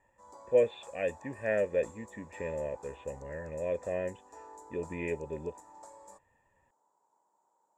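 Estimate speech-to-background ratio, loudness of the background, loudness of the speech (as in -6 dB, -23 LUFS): 18.5 dB, -53.0 LUFS, -34.5 LUFS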